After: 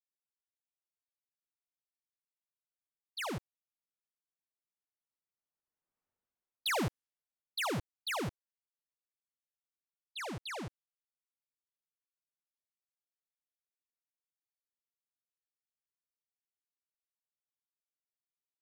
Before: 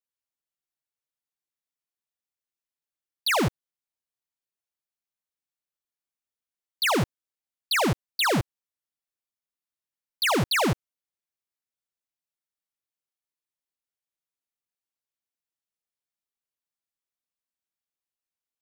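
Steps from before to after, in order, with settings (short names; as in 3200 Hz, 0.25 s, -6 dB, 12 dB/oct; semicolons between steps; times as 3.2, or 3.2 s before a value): Doppler pass-by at 6.06, 10 m/s, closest 2.1 m; soft clip -39.5 dBFS, distortion -10 dB; low-pass opened by the level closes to 1300 Hz, open at -47 dBFS; gain +8.5 dB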